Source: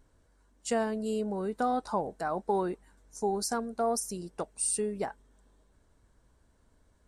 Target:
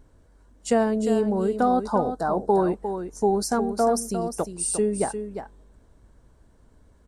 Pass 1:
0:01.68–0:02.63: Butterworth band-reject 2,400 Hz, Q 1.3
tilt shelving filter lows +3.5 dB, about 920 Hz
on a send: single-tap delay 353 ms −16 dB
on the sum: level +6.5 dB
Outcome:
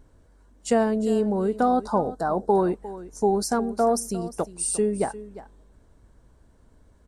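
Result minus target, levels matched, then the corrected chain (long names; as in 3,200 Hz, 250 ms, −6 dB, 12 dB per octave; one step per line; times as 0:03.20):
echo-to-direct −7 dB
0:01.68–0:02.63: Butterworth band-reject 2,400 Hz, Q 1.3
tilt shelving filter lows +3.5 dB, about 920 Hz
on a send: single-tap delay 353 ms −9 dB
on the sum: level +6.5 dB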